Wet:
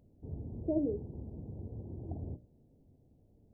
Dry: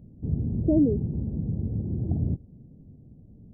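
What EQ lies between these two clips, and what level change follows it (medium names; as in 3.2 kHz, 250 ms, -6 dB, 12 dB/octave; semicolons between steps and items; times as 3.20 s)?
bass shelf 92 Hz -11 dB; peaking EQ 180 Hz -14.5 dB 1.7 oct; hum notches 60/120/180/240/300/360/420/480/540/600 Hz; -1.5 dB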